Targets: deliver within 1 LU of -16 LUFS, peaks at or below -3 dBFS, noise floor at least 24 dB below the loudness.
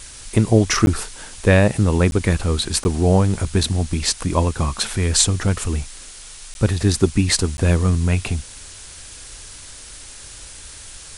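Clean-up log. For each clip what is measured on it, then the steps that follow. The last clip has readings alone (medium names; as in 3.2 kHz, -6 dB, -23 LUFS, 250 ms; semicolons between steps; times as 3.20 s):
dropouts 5; longest dropout 11 ms; noise floor -39 dBFS; noise floor target -43 dBFS; loudness -19.0 LUFS; peak level -1.5 dBFS; loudness target -16.0 LUFS
-> interpolate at 0.86/2.11/2.84/6.54/7.57 s, 11 ms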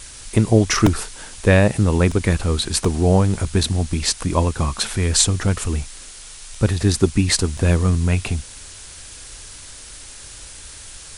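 dropouts 0; noise floor -39 dBFS; noise floor target -43 dBFS
-> noise print and reduce 6 dB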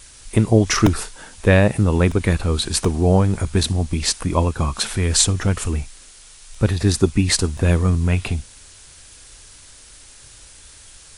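noise floor -45 dBFS; loudness -19.0 LUFS; peak level -1.5 dBFS; loudness target -16.0 LUFS
-> trim +3 dB; peak limiter -3 dBFS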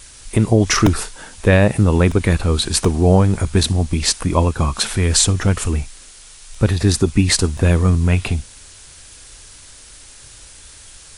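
loudness -16.5 LUFS; peak level -3.0 dBFS; noise floor -42 dBFS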